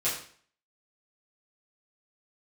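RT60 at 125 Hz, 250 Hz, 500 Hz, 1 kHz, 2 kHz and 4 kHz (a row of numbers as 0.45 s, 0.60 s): 0.50 s, 0.50 s, 0.50 s, 0.50 s, 0.50 s, 0.45 s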